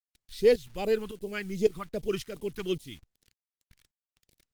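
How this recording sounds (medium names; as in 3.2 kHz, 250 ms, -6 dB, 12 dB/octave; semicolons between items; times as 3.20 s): tremolo saw up 1.8 Hz, depth 80%; a quantiser's noise floor 10-bit, dither none; phasing stages 2, 2.6 Hz, lowest notch 520–1300 Hz; Opus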